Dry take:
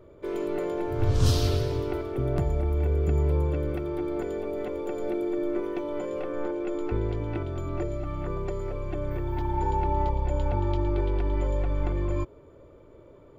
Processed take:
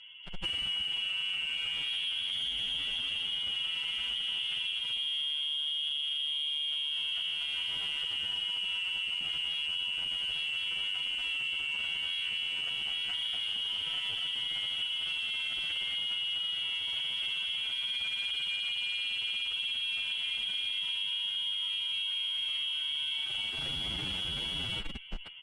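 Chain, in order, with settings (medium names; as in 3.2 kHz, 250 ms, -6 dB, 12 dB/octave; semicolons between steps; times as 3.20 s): frequency inversion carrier 3.3 kHz; de-hum 97.61 Hz, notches 6; saturation -19.5 dBFS, distortion -14 dB; on a send: multi-tap echo 128/812 ms -3/-11 dB; on the sum: Schroeder reverb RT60 1.1 s, combs from 28 ms, DRR 11.5 dB; in parallel at -9.5 dB: Schmitt trigger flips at -39 dBFS; on the sum: dynamic bell 650 Hz, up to -7 dB, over -54 dBFS, Q 2.4; time stretch by phase-locked vocoder 1.9×; distance through air 81 m; comb 1.4 ms, depth 32%; compression 10:1, threshold -33 dBFS, peak gain reduction 13.5 dB; trim +2 dB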